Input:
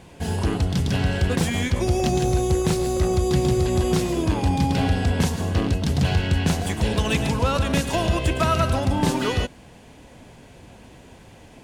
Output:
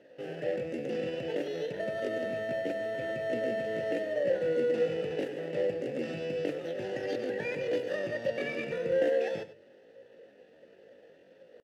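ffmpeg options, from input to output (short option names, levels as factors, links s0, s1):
-filter_complex "[0:a]asetrate=78577,aresample=44100,atempo=0.561231,equalizer=f=240:t=o:w=1.5:g=3,asplit=2[s0][s1];[s1]acrusher=samples=18:mix=1:aa=0.000001,volume=0.631[s2];[s0][s2]amix=inputs=2:normalize=0,asplit=3[s3][s4][s5];[s3]bandpass=f=530:t=q:w=8,volume=1[s6];[s4]bandpass=f=1840:t=q:w=8,volume=0.501[s7];[s5]bandpass=f=2480:t=q:w=8,volume=0.355[s8];[s6][s7][s8]amix=inputs=3:normalize=0,bandreject=f=50:t=h:w=6,bandreject=f=100:t=h:w=6,bandreject=f=150:t=h:w=6,asplit=2[s9][s10];[s10]aecho=0:1:99:0.178[s11];[s9][s11]amix=inputs=2:normalize=0,volume=0.794"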